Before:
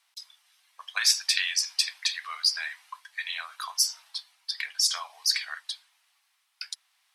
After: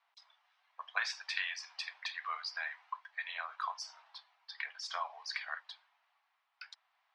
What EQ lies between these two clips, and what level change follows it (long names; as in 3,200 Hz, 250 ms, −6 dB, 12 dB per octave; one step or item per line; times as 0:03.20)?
resonant band-pass 670 Hz, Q 0.93
high-frequency loss of the air 110 metres
+3.5 dB